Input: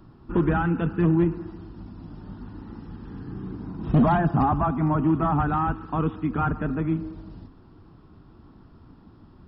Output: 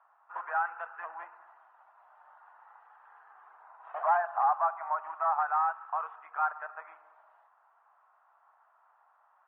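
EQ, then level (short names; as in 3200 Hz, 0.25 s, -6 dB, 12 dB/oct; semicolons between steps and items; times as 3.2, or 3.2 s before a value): steep high-pass 680 Hz 48 dB/oct; LPF 1800 Hz 24 dB/oct; -1.5 dB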